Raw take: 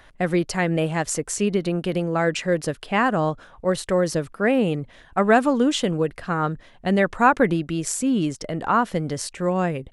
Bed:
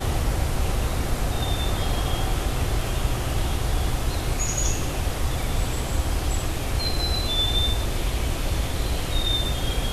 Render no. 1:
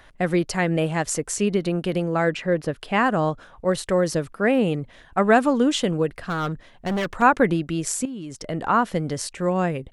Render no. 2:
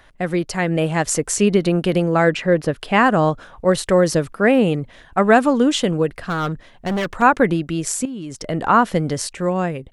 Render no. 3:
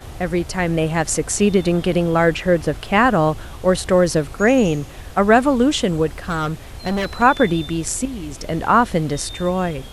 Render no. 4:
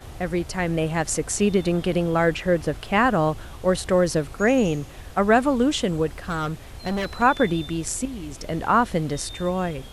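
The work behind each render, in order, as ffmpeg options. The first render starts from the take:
-filter_complex "[0:a]asettb=1/sr,asplit=3[a][b][c];[a]atrim=end=2.304[d];[b]atrim=start=2.3:end=2.76,asetpts=PTS-STARTPTS,afade=t=in:d=0.004:c=qsin,afade=t=out:st=0.456:d=0.004:c=qsin,equalizer=f=8k:w=0.59:g=-12.5[e];[c]atrim=start=2.756[f];[d][e]acrossfade=d=0.004:c1=hsin:c2=qsin[g];[g][f]acrossfade=d=0.004:c1=qsin:c2=hsin,asettb=1/sr,asplit=3[h][i][j];[h]atrim=end=6.124[k];[i]atrim=start=6.12:end=7.22,asetpts=PTS-STARTPTS,afade=t=in:d=0.004:c=qsin,afade=t=out:st=1.096:d=0.004:c=qsin,asoftclip=type=hard:threshold=-21.5dB[l];[j]atrim=start=7.216[m];[k][l]acrossfade=d=0.004:c1=hsin:c2=qsin[n];[n][m]acrossfade=d=0.004:c1=qsin:c2=hsin,asettb=1/sr,asplit=3[o][p][q];[o]atrim=end=8.054[r];[p]atrim=start=8.05:end=8.47,asetpts=PTS-STARTPTS,afade=t=in:d=0.004:c=qsin,afade=t=out:st=0.416:d=0.004:c=qsin,acompressor=threshold=-30dB:ratio=16:attack=3.2:release=140:knee=1:detection=peak[s];[q]atrim=start=8.466[t];[r][s]acrossfade=d=0.004:c1=hsin:c2=qsin[u];[u][t]acrossfade=d=0.004:c1=qsin:c2=hsin"
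-af "dynaudnorm=f=250:g=7:m=7dB"
-filter_complex "[1:a]volume=-10.5dB[a];[0:a][a]amix=inputs=2:normalize=0"
-af "volume=-4.5dB"

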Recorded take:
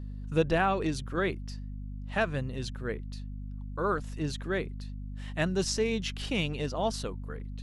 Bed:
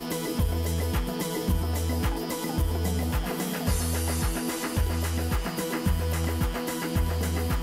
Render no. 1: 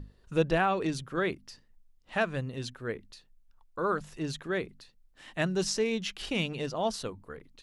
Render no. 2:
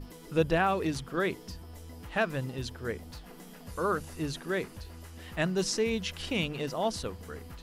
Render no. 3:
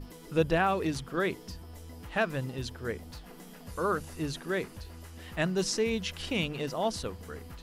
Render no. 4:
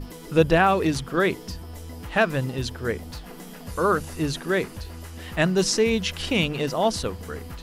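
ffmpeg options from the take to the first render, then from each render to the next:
-af "bandreject=f=50:t=h:w=6,bandreject=f=100:t=h:w=6,bandreject=f=150:t=h:w=6,bandreject=f=200:t=h:w=6,bandreject=f=250:t=h:w=6"
-filter_complex "[1:a]volume=-19dB[a];[0:a][a]amix=inputs=2:normalize=0"
-af anull
-af "volume=8dB"

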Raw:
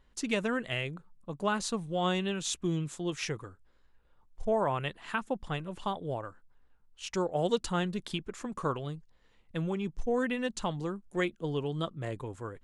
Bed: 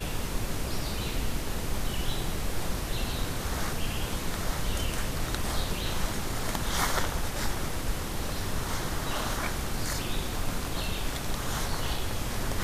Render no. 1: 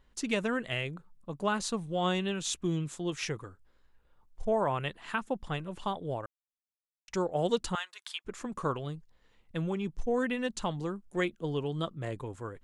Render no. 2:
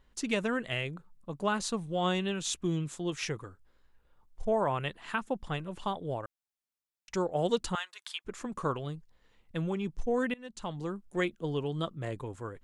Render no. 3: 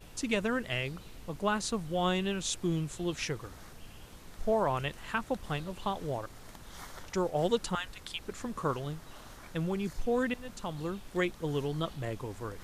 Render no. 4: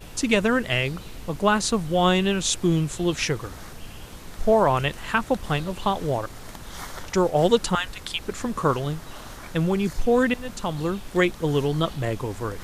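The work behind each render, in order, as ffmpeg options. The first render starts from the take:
-filter_complex "[0:a]asettb=1/sr,asplit=3[a][b][c];[a]atrim=end=7.754[d];[b]atrim=start=7.75:end=8.25,asetpts=PTS-STARTPTS,afade=t=in:d=0.004:c=qsin,afade=t=out:st=0.496:d=0.004:c=qsin,highpass=f=980:w=0.5412,highpass=f=980:w=1.3066[e];[c]atrim=start=8.246[f];[d][e]acrossfade=d=0.004:c1=hsin:c2=qsin[g];[g][f]acrossfade=d=0.004:c1=qsin:c2=hsin,asplit=3[h][i][j];[h]atrim=end=6.26,asetpts=PTS-STARTPTS,afade=t=out:st=6.256:d=0.004:c=hsin[k];[i]atrim=start=6.26:end=7.08,asetpts=PTS-STARTPTS,volume=0[l];[j]atrim=start=7.08,asetpts=PTS-STARTPTS,afade=t=in:d=0.004:c=hsin[m];[k][l][m]concat=n=3:v=0:a=1"
-filter_complex "[0:a]asplit=2[a][b];[a]atrim=end=10.34,asetpts=PTS-STARTPTS,afade=t=out:st=10.336:d=0.004:c=hsin:silence=0.0668344[c];[b]atrim=start=10.34,asetpts=PTS-STARTPTS,afade=t=in:d=0.61:silence=0.0668344[d];[c][d]concat=n=2:v=0:a=1"
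-filter_complex "[1:a]volume=-19dB[a];[0:a][a]amix=inputs=2:normalize=0"
-af "volume=10dB"

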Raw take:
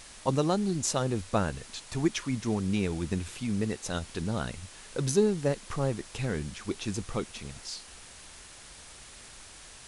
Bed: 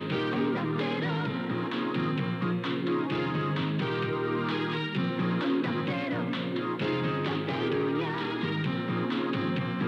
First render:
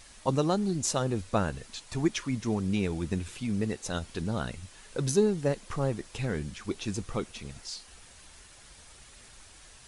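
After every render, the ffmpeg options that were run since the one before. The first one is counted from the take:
-af "afftdn=nr=6:nf=-50"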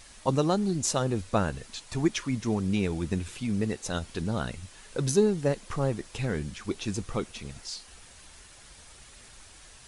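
-af "volume=1.5dB"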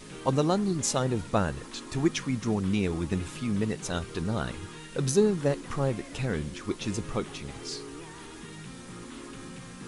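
-filter_complex "[1:a]volume=-14dB[a];[0:a][a]amix=inputs=2:normalize=0"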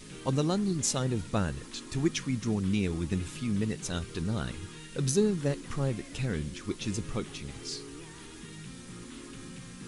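-af "equalizer=f=800:w=0.63:g=-7.5"

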